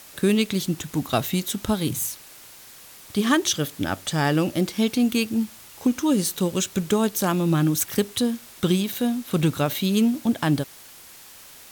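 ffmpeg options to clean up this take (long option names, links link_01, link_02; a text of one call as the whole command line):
ffmpeg -i in.wav -af "afftdn=noise_reduction=22:noise_floor=-46" out.wav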